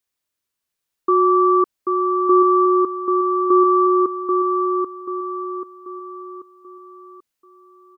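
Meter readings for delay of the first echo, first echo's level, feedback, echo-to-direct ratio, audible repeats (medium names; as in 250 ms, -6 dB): 786 ms, -4.5 dB, 42%, -3.5 dB, 5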